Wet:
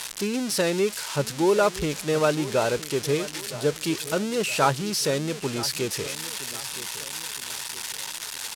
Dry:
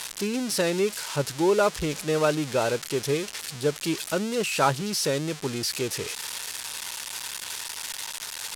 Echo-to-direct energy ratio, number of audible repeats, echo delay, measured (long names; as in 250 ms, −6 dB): −15.0 dB, 3, 966 ms